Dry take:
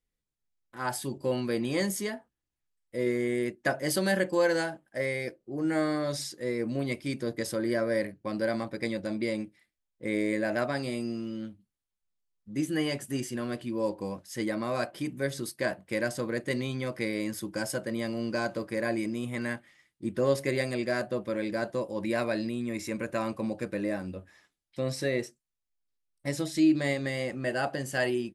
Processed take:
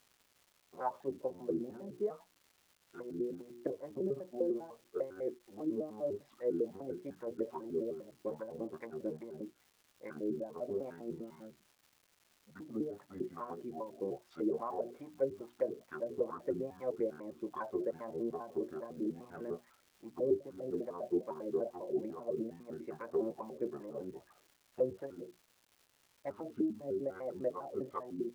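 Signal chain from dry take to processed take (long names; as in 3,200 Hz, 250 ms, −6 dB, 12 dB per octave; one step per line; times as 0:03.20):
pitch shifter gated in a rhythm −6 semitones, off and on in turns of 100 ms
treble cut that deepens with the level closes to 310 Hz, closed at −25.5 dBFS
mains-hum notches 60/120/180/240/300/360 Hz
LFO wah 2.4 Hz 370–1,000 Hz, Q 3.9
surface crackle 500 per second −60 dBFS
level +5 dB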